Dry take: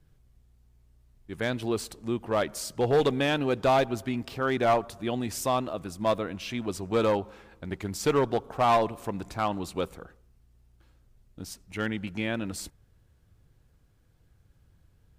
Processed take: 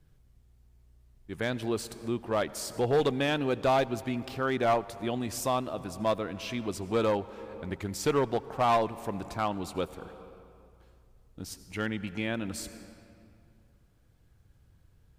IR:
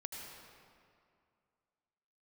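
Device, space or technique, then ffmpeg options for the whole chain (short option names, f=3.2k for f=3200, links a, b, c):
ducked reverb: -filter_complex "[0:a]asplit=3[a][b][c];[1:a]atrim=start_sample=2205[d];[b][d]afir=irnorm=-1:irlink=0[e];[c]apad=whole_len=669868[f];[e][f]sidechaincompress=threshold=-34dB:ratio=8:attack=38:release=456,volume=-4.5dB[g];[a][g]amix=inputs=2:normalize=0,volume=-3dB"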